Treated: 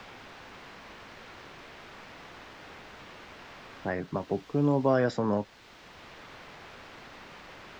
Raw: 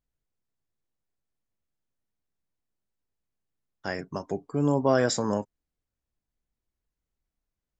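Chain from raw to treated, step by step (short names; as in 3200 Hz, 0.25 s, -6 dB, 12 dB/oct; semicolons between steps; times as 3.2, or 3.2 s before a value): low-pass opened by the level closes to 300 Hz, open at -23 dBFS; requantised 8-bit, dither triangular; air absorption 210 m; three-band squash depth 40%; gain +3 dB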